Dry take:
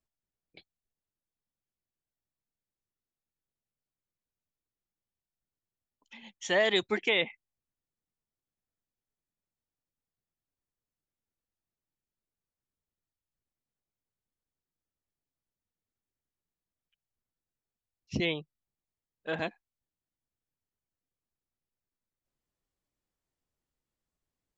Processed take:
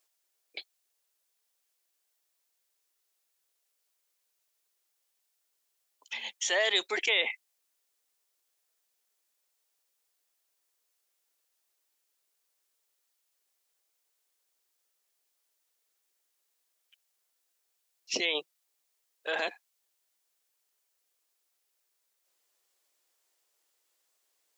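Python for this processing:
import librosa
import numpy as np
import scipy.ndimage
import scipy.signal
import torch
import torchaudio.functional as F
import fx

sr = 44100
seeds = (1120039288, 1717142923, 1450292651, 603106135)

p1 = scipy.signal.sosfilt(scipy.signal.butter(4, 410.0, 'highpass', fs=sr, output='sos'), x)
p2 = fx.high_shelf(p1, sr, hz=2500.0, db=10.0)
p3 = fx.over_compress(p2, sr, threshold_db=-38.0, ratio=-1.0)
p4 = p2 + F.gain(torch.from_numpy(p3), 2.0).numpy()
y = F.gain(torch.from_numpy(p4), -4.5).numpy()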